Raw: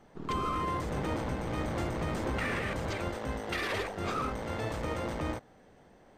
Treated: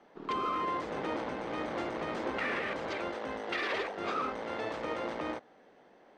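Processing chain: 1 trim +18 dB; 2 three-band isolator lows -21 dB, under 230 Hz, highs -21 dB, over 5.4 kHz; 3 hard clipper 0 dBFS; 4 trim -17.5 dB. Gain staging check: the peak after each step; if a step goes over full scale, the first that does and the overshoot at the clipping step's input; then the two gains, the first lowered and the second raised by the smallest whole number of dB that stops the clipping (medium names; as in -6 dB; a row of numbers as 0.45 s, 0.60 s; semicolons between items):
-4.0 dBFS, -4.5 dBFS, -4.5 dBFS, -22.0 dBFS; nothing clips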